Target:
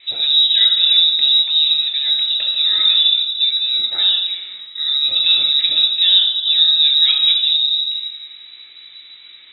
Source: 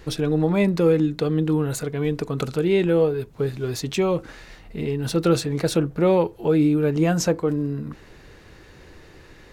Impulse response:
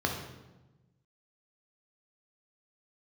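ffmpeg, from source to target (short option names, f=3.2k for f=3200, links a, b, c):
-filter_complex "[0:a]crystalizer=i=1.5:c=0[a];[1:a]atrim=start_sample=2205[b];[a][b]afir=irnorm=-1:irlink=0,lowpass=f=3.4k:t=q:w=0.5098,lowpass=f=3.4k:t=q:w=0.6013,lowpass=f=3.4k:t=q:w=0.9,lowpass=f=3.4k:t=q:w=2.563,afreqshift=-4000,volume=-7dB"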